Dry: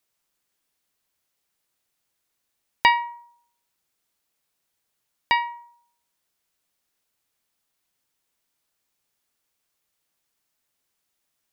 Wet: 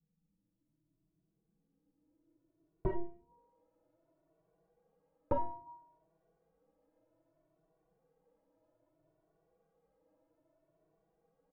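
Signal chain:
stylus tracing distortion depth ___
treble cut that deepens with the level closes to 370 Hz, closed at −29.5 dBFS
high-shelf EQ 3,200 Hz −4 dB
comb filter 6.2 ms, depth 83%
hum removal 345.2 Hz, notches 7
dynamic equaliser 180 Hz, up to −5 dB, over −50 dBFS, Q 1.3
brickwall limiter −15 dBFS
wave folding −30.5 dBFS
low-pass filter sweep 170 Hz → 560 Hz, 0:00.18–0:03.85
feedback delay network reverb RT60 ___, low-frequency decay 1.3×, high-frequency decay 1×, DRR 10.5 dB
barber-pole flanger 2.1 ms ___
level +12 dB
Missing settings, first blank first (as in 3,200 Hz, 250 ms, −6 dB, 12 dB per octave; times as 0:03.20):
0.2 ms, 0.54 s, +0.62 Hz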